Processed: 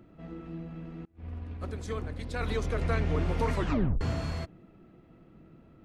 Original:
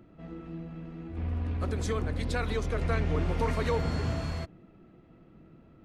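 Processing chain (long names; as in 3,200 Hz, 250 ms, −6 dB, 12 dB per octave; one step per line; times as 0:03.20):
0:01.05–0:02.41: downward expander −24 dBFS
0:03.54: tape stop 0.47 s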